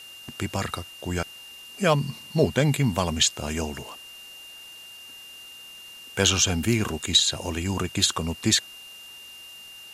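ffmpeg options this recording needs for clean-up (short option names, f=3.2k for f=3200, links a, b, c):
-af "bandreject=f=2.8k:w=30,afftdn=nr=25:nf=-44"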